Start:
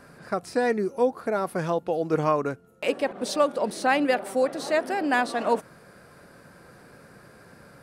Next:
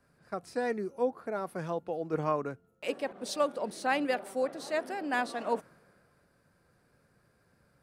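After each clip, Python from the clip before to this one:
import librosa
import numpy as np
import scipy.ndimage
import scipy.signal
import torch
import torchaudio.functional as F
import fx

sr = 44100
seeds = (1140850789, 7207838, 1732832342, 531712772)

y = fx.band_widen(x, sr, depth_pct=40)
y = y * librosa.db_to_amplitude(-8.0)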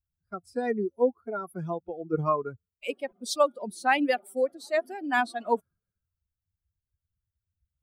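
y = fx.bin_expand(x, sr, power=2.0)
y = y * librosa.db_to_amplitude(8.0)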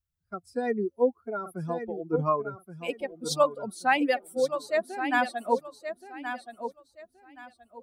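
y = fx.echo_feedback(x, sr, ms=1124, feedback_pct=24, wet_db=-9.5)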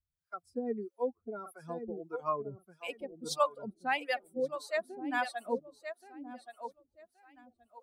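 y = fx.harmonic_tremolo(x, sr, hz=1.6, depth_pct=100, crossover_hz=560.0)
y = y * librosa.db_to_amplitude(-2.5)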